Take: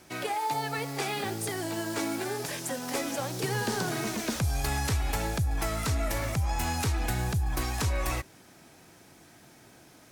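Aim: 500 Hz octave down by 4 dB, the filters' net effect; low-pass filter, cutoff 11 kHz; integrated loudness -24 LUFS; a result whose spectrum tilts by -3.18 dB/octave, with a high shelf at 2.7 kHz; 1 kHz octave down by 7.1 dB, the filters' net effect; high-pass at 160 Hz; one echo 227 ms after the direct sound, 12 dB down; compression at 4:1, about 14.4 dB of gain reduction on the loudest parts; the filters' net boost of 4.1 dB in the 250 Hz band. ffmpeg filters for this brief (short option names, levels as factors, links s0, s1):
-af "highpass=160,lowpass=11000,equalizer=f=250:t=o:g=9,equalizer=f=500:t=o:g=-7.5,equalizer=f=1000:t=o:g=-8.5,highshelf=f=2700:g=9,acompressor=threshold=0.00891:ratio=4,aecho=1:1:227:0.251,volume=7.08"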